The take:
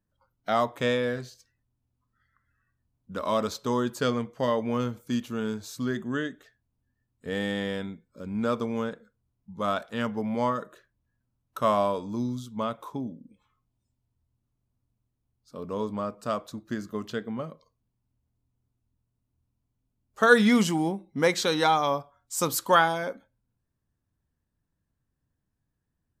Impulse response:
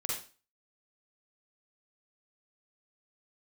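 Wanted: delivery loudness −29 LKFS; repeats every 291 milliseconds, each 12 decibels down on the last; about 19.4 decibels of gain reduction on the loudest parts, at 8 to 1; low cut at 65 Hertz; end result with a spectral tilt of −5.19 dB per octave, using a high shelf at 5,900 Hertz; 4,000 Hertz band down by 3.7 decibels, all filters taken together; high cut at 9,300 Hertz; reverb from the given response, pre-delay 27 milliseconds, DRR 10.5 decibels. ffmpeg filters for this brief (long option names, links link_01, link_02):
-filter_complex "[0:a]highpass=65,lowpass=9300,equalizer=frequency=4000:width_type=o:gain=-3.5,highshelf=frequency=5900:gain=-3,acompressor=threshold=-33dB:ratio=8,aecho=1:1:291|582|873:0.251|0.0628|0.0157,asplit=2[link_01][link_02];[1:a]atrim=start_sample=2205,adelay=27[link_03];[link_02][link_03]afir=irnorm=-1:irlink=0,volume=-14dB[link_04];[link_01][link_04]amix=inputs=2:normalize=0,volume=9dB"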